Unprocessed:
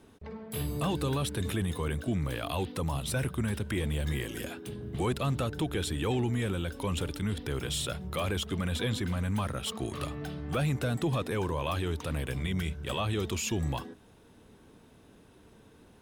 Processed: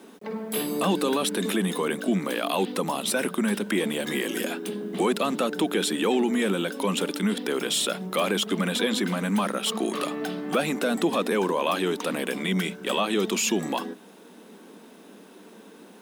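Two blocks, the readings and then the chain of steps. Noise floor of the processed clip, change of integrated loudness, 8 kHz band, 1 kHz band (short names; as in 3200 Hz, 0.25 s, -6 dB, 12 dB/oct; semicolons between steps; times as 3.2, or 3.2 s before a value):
-49 dBFS, +6.5 dB, +8.5 dB, +8.5 dB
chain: elliptic high-pass 190 Hz, stop band 40 dB; in parallel at 0 dB: limiter -27.5 dBFS, peak gain reduction 8.5 dB; on the sum: bit-crush 11-bit; gain +4.5 dB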